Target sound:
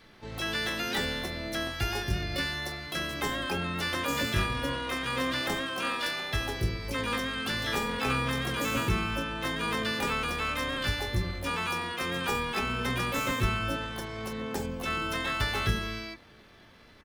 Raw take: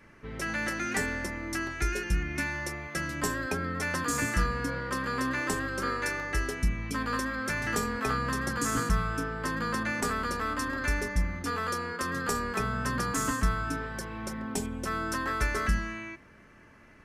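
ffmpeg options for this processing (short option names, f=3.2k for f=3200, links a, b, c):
-filter_complex "[0:a]bandreject=f=49.04:t=h:w=4,bandreject=f=98.08:t=h:w=4,bandreject=f=147.12:t=h:w=4,bandreject=f=196.16:t=h:w=4,bandreject=f=245.2:t=h:w=4,bandreject=f=294.24:t=h:w=4,bandreject=f=343.28:t=h:w=4,bandreject=f=392.32:t=h:w=4,bandreject=f=441.36:t=h:w=4,bandreject=f=490.4:t=h:w=4,bandreject=f=539.44:t=h:w=4,bandreject=f=588.48:t=h:w=4,bandreject=f=637.52:t=h:w=4,bandreject=f=686.56:t=h:w=4,bandreject=f=735.6:t=h:w=4,bandreject=f=784.64:t=h:w=4,bandreject=f=833.68:t=h:w=4,bandreject=f=882.72:t=h:w=4,bandreject=f=931.76:t=h:w=4,bandreject=f=980.8:t=h:w=4,bandreject=f=1.02984k:t=h:w=4,bandreject=f=1.07888k:t=h:w=4,bandreject=f=1.12792k:t=h:w=4,bandreject=f=1.17696k:t=h:w=4,acrossover=split=5800[a][b];[b]acompressor=threshold=-46dB:ratio=4:attack=1:release=60[c];[a][c]amix=inputs=2:normalize=0,asplit=3[d][e][f];[e]asetrate=29433,aresample=44100,atempo=1.49831,volume=-16dB[g];[f]asetrate=88200,aresample=44100,atempo=0.5,volume=-1dB[h];[d][g][h]amix=inputs=3:normalize=0,volume=-2dB"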